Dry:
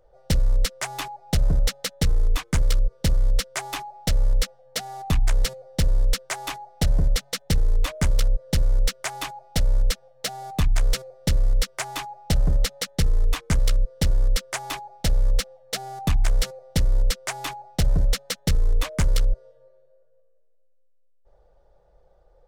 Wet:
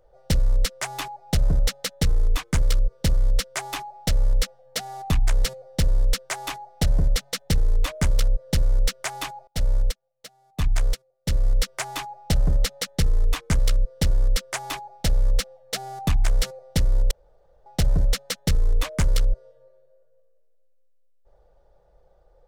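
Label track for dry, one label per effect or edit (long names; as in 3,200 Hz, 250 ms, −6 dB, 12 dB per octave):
9.470000	11.450000	expander for the loud parts 2.5 to 1, over −32 dBFS
17.110000	17.660000	fill with room tone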